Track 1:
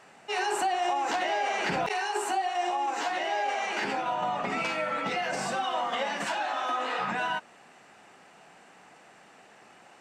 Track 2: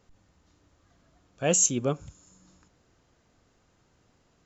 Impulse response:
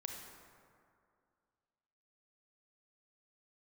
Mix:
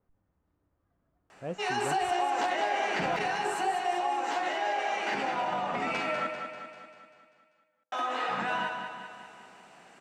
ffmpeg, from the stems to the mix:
-filter_complex "[0:a]adelay=1300,volume=0.668,asplit=3[s0][s1][s2];[s0]atrim=end=6.27,asetpts=PTS-STARTPTS,afade=t=out:st=6.266:d=0.004:c=hsin[s3];[s1]atrim=start=6.27:end=7.92,asetpts=PTS-STARTPTS,volume=0[s4];[s2]atrim=start=7.92,asetpts=PTS-STARTPTS,afade=t=in:d=0.004:c=hsin[s5];[s3][s4][s5]concat=n=3:v=0:a=1,asplit=3[s6][s7][s8];[s7]volume=0.355[s9];[s8]volume=0.562[s10];[1:a]lowpass=1500,volume=0.282[s11];[2:a]atrim=start_sample=2205[s12];[s9][s12]afir=irnorm=-1:irlink=0[s13];[s10]aecho=0:1:196|392|588|784|980|1176|1372|1568:1|0.55|0.303|0.166|0.0915|0.0503|0.0277|0.0152[s14];[s6][s11][s13][s14]amix=inputs=4:normalize=0,adynamicequalizer=threshold=0.00398:dfrequency=3900:dqfactor=0.7:tfrequency=3900:tqfactor=0.7:attack=5:release=100:ratio=0.375:range=2:mode=cutabove:tftype=highshelf"

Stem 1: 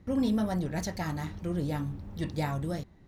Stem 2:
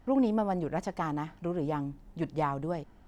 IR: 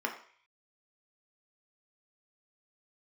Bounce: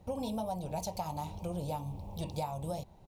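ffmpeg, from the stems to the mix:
-filter_complex "[0:a]firequalizer=gain_entry='entry(170,0);entry(250,-7);entry(530,7);entry(930,11);entry(1500,-26);entry(2400,2);entry(5700,3);entry(8900,8)':delay=0.05:min_phase=1,volume=0.841[s0];[1:a]volume=0.282[s1];[s0][s1]amix=inputs=2:normalize=0,acompressor=threshold=0.0224:ratio=6"

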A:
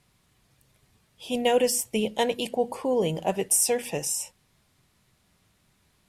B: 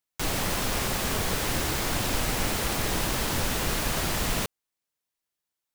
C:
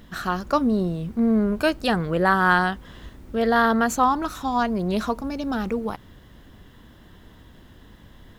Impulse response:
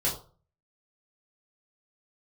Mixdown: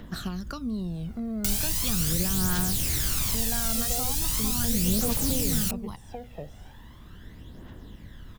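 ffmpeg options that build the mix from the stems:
-filter_complex "[0:a]lowpass=1100,adelay=2450,volume=0.668[s0];[1:a]highshelf=f=4800:g=10.5,acrossover=split=230|1700[s1][s2][s3];[s1]acompressor=threshold=0.0178:ratio=4[s4];[s2]acompressor=threshold=0.00794:ratio=4[s5];[s3]acompressor=threshold=0.0355:ratio=4[s6];[s4][s5][s6]amix=inputs=3:normalize=0,adelay=1250,volume=1.12[s7];[2:a]acompressor=threshold=0.0282:ratio=1.5,volume=0.841[s8];[s0][s7][s8]amix=inputs=3:normalize=0,acrossover=split=240|3000[s9][s10][s11];[s10]acompressor=threshold=0.0112:ratio=5[s12];[s9][s12][s11]amix=inputs=3:normalize=0,aphaser=in_gain=1:out_gain=1:delay=1.6:decay=0.54:speed=0.39:type=triangular"

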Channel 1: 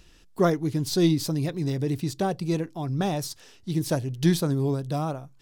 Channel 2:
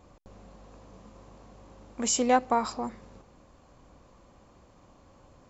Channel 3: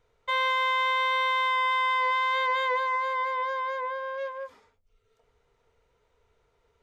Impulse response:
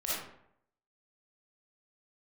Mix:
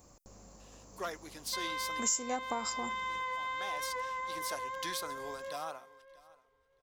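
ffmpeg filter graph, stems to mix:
-filter_complex "[0:a]highpass=940,asoftclip=type=tanh:threshold=0.0708,adelay=600,volume=0.708,asplit=2[s0][s1];[s1]volume=0.0708[s2];[1:a]aexciter=amount=6:drive=6:freq=5000,volume=0.562,asplit=2[s3][s4];[2:a]adelay=1250,volume=0.299,asplit=2[s5][s6];[s6]volume=0.178[s7];[s4]apad=whole_len=265370[s8];[s0][s8]sidechaincompress=threshold=0.00316:ratio=4:attack=16:release=750[s9];[s2][s7]amix=inputs=2:normalize=0,aecho=0:1:633|1266|1899:1|0.17|0.0289[s10];[s9][s3][s5][s10]amix=inputs=4:normalize=0,acompressor=threshold=0.0224:ratio=3"

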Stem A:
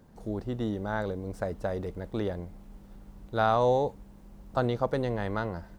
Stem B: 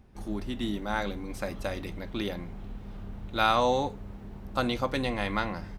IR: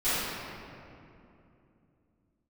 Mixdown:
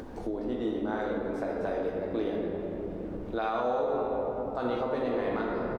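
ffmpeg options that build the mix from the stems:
-filter_complex "[0:a]lowshelf=f=200:t=q:w=1.5:g=-12,volume=0.596,asplit=2[s0][s1];[s1]volume=0.316[s2];[1:a]volume=-1,adelay=15,volume=0.237,asplit=2[s3][s4];[s4]volume=0.266[s5];[2:a]atrim=start_sample=2205[s6];[s2][s5]amix=inputs=2:normalize=0[s7];[s7][s6]afir=irnorm=-1:irlink=0[s8];[s0][s3][s8]amix=inputs=3:normalize=0,lowpass=f=2700:p=1,acompressor=mode=upward:threshold=0.0398:ratio=2.5,alimiter=limit=0.1:level=0:latency=1:release=134"

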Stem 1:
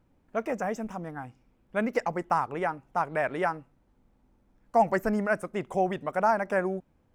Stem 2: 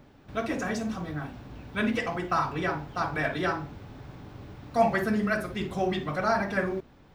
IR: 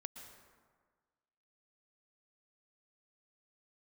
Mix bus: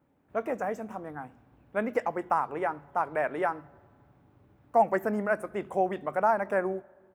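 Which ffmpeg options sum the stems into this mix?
-filter_complex "[0:a]highpass=250,volume=0.944,asplit=2[s0][s1];[s1]volume=0.158[s2];[1:a]alimiter=limit=0.0944:level=0:latency=1,highpass=59,adelay=13,volume=0.15[s3];[2:a]atrim=start_sample=2205[s4];[s2][s4]afir=irnorm=-1:irlink=0[s5];[s0][s3][s5]amix=inputs=3:normalize=0,equalizer=f=4800:w=0.82:g=-11.5"

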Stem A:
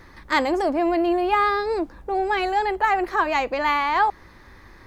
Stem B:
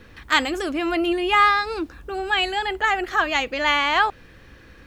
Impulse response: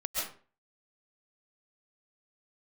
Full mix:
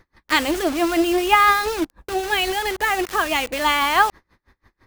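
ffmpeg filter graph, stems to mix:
-filter_complex "[0:a]agate=range=0.447:threshold=0.00891:ratio=16:detection=peak,aeval=exprs='val(0)*pow(10,-31*(0.5-0.5*cos(2*PI*6*n/s))/20)':c=same,volume=1.06[s0];[1:a]acrusher=bits=4:mix=0:aa=0.000001,volume=1[s1];[s0][s1]amix=inputs=2:normalize=0"

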